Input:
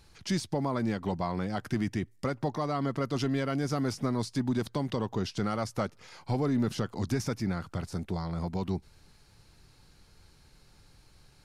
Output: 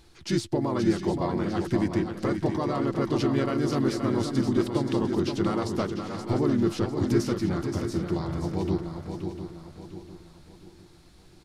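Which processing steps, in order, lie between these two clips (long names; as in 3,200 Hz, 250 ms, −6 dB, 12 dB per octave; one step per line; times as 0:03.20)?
pitch-shifted copies added −3 semitones −4 dB
parametric band 340 Hz +14 dB 0.23 octaves
feedback echo with a long and a short gap by turns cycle 700 ms, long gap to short 3 to 1, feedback 38%, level −7 dB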